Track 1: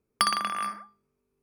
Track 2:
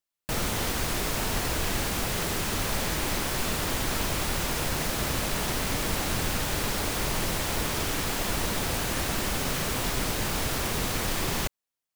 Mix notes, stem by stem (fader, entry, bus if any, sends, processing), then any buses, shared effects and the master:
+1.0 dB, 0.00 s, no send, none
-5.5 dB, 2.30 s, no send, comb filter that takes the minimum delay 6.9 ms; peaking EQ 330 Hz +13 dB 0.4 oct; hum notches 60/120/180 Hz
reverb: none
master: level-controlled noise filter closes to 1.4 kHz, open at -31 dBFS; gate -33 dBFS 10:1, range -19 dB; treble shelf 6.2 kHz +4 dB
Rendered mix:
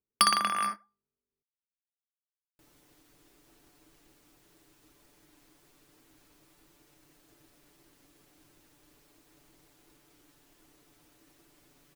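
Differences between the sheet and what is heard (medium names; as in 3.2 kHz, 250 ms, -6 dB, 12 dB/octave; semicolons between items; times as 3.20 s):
stem 2 -5.5 dB -> -16.5 dB; master: missing level-controlled noise filter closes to 1.4 kHz, open at -31 dBFS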